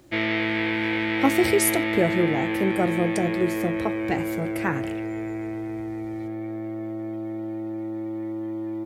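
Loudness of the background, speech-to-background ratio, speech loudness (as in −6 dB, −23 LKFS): −27.5 LKFS, 2.0 dB, −25.5 LKFS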